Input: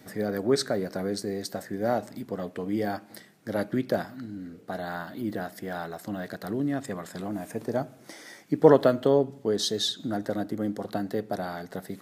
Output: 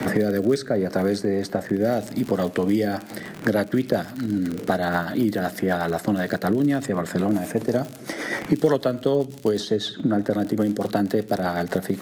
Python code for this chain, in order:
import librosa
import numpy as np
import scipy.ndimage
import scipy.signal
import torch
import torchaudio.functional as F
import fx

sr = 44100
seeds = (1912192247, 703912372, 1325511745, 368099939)

y = fx.rotary_switch(x, sr, hz=0.7, then_hz=8.0, switch_at_s=2.66)
y = fx.dmg_crackle(y, sr, seeds[0], per_s=50.0, level_db=-39.0)
y = fx.band_squash(y, sr, depth_pct=100)
y = y * librosa.db_to_amplitude(8.5)